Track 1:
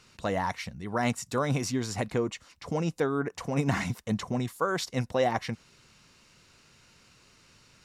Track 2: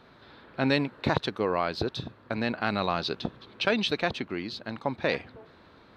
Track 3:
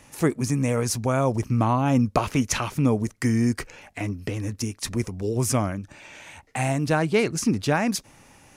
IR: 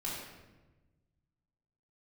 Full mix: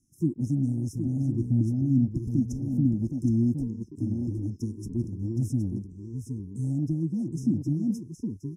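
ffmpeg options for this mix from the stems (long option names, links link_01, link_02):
-filter_complex "[1:a]acompressor=threshold=-39dB:ratio=2,volume=-2.5dB,asplit=2[link_01][link_02];[link_02]volume=-14.5dB[link_03];[2:a]volume=-2dB,asplit=2[link_04][link_05];[link_05]volume=-7.5dB[link_06];[3:a]atrim=start_sample=2205[link_07];[link_03][link_07]afir=irnorm=-1:irlink=0[link_08];[link_06]aecho=0:1:766:1[link_09];[link_01][link_04][link_08][link_09]amix=inputs=4:normalize=0,afftfilt=real='re*(1-between(b*sr/4096,360,5100))':imag='im*(1-between(b*sr/4096,360,5100))':win_size=4096:overlap=0.75,afwtdn=0.0224,acrossover=split=430[link_10][link_11];[link_11]acompressor=threshold=-45dB:ratio=2.5[link_12];[link_10][link_12]amix=inputs=2:normalize=0"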